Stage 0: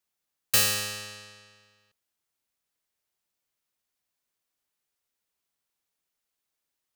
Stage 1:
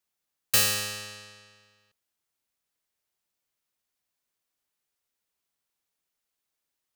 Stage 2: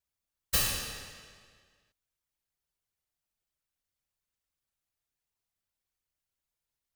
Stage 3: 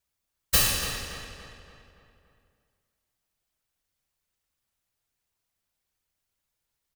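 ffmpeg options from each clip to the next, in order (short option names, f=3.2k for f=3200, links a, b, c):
-af anull
-af "aeval=exprs='if(lt(val(0),0),0.251*val(0),val(0))':c=same,afftfilt=real='hypot(re,im)*cos(2*PI*random(0))':imag='hypot(re,im)*sin(2*PI*random(1))':win_size=512:overlap=0.75,volume=3.5dB"
-filter_complex "[0:a]asplit=2[a][b];[b]adelay=285,lowpass=f=3.4k:p=1,volume=-8.5dB,asplit=2[c][d];[d]adelay=285,lowpass=f=3.4k:p=1,volume=0.52,asplit=2[e][f];[f]adelay=285,lowpass=f=3.4k:p=1,volume=0.52,asplit=2[g][h];[h]adelay=285,lowpass=f=3.4k:p=1,volume=0.52,asplit=2[i][j];[j]adelay=285,lowpass=f=3.4k:p=1,volume=0.52,asplit=2[k][l];[l]adelay=285,lowpass=f=3.4k:p=1,volume=0.52[m];[a][c][e][g][i][k][m]amix=inputs=7:normalize=0,volume=6dB"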